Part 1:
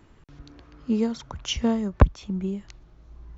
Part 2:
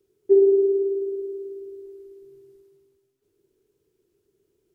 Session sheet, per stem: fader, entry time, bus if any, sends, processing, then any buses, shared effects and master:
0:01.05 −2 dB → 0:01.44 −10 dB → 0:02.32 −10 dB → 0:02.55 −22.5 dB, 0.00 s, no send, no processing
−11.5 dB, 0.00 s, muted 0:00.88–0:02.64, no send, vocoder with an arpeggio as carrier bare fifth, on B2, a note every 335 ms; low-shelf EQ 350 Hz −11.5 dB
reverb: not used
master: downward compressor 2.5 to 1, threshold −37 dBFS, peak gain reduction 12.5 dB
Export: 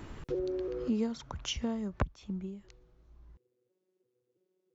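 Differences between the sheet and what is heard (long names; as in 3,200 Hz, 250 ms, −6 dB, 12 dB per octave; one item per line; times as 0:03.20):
stem 1 −2.0 dB → +9.0 dB
stem 2 −11.5 dB → −3.0 dB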